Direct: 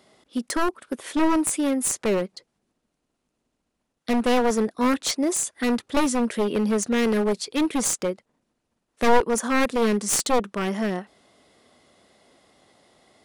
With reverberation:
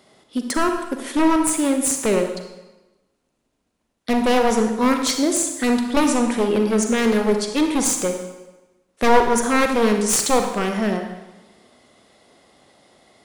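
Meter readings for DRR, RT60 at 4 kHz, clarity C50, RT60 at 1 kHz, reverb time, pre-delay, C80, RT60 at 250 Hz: 4.5 dB, 0.95 s, 6.0 dB, 1.1 s, 1.1 s, 36 ms, 8.0 dB, 1.1 s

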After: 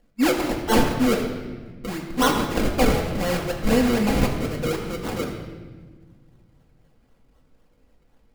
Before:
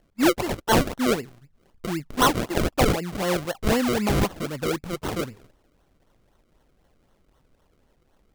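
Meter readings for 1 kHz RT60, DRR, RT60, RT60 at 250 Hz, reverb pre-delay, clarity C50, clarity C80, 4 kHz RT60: 1.3 s, −2.5 dB, 1.4 s, 2.5 s, 4 ms, 5.0 dB, 6.0 dB, 1.1 s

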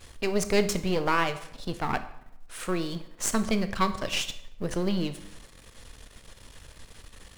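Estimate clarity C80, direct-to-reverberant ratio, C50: 15.5 dB, 10.0 dB, 13.0 dB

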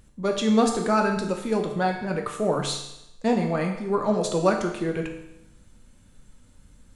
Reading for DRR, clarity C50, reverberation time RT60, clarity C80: 2.0 dB, 6.0 dB, 0.85 s, 8.5 dB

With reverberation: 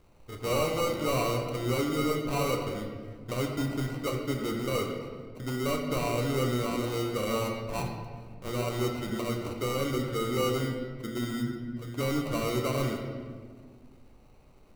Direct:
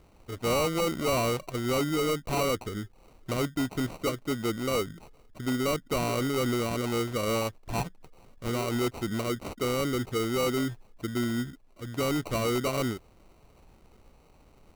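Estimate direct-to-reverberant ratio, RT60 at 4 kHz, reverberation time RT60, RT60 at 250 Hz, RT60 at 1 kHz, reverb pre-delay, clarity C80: 1.5 dB, 1.1 s, 1.8 s, 2.4 s, 1.5 s, 4 ms, 5.5 dB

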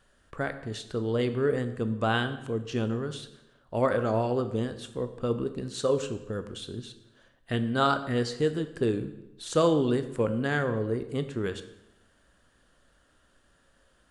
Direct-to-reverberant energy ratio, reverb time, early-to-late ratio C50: 9.5 dB, 0.95 s, 12.0 dB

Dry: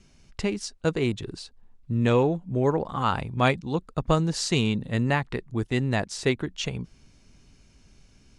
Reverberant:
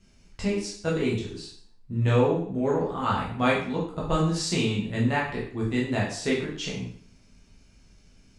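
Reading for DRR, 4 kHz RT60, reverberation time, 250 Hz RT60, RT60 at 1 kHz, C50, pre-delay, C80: −5.5 dB, 0.50 s, 0.55 s, 0.55 s, 0.55 s, 4.5 dB, 6 ms, 8.5 dB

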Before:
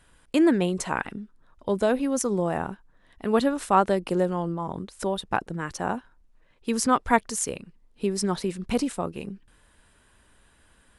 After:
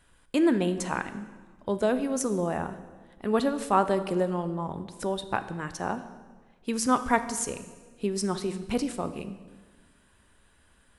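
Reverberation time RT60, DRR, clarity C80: 1.4 s, 10.0 dB, 14.0 dB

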